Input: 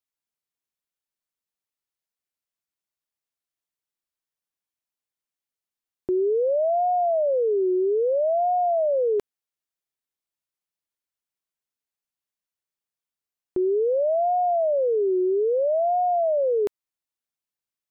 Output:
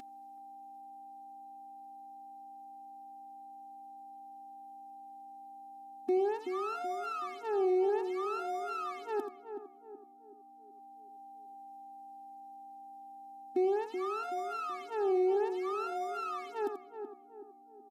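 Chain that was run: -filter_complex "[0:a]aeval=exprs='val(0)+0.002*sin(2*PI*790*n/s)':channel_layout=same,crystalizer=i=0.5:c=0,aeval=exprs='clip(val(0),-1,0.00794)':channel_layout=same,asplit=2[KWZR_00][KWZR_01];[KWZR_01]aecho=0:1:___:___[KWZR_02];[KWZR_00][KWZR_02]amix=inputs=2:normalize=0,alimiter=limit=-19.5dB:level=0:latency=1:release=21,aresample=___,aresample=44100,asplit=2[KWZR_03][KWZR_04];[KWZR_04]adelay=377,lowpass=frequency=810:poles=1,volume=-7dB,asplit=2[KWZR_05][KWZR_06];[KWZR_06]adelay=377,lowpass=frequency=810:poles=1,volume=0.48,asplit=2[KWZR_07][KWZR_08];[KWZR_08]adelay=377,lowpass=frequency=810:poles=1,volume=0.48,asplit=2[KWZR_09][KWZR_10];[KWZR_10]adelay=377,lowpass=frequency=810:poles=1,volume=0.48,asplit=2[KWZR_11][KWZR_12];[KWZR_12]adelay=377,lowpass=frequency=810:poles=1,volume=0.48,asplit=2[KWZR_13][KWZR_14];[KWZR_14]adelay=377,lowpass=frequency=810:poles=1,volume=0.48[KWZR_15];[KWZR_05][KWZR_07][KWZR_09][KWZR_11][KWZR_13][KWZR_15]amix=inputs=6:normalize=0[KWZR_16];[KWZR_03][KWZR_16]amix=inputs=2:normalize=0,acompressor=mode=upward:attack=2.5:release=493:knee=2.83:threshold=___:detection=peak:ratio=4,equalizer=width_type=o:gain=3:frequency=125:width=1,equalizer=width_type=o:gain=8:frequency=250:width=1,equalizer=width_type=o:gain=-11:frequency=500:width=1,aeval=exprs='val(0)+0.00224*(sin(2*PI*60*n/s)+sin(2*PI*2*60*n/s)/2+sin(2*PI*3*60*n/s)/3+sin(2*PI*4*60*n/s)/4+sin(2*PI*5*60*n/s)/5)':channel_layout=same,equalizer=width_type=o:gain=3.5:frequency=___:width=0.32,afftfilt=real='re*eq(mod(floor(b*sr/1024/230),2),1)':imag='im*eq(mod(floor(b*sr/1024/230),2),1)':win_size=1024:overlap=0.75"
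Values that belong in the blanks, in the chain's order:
84, 0.282, 32000, -41dB, 390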